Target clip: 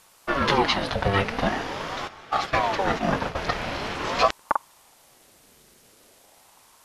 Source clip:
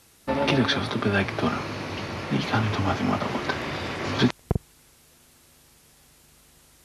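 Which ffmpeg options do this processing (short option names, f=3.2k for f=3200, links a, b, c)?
-filter_complex "[0:a]asplit=3[a][b][c];[a]afade=t=out:st=2.07:d=0.02[d];[b]agate=range=-13dB:threshold=-27dB:ratio=16:detection=peak,afade=t=in:st=2.07:d=0.02,afade=t=out:st=3.36:d=0.02[e];[c]afade=t=in:st=3.36:d=0.02[f];[d][e][f]amix=inputs=3:normalize=0,aeval=exprs='val(0)*sin(2*PI*650*n/s+650*0.55/0.44*sin(2*PI*0.44*n/s))':c=same,volume=3.5dB"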